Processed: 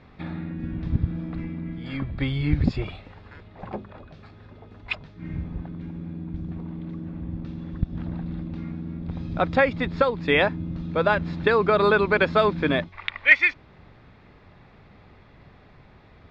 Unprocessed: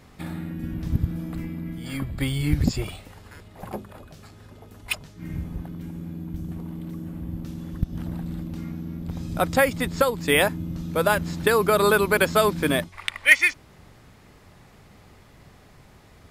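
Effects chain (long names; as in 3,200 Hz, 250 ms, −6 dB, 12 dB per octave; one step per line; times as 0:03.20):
low-pass filter 3,800 Hz 24 dB per octave
notch filter 3,000 Hz, Q 12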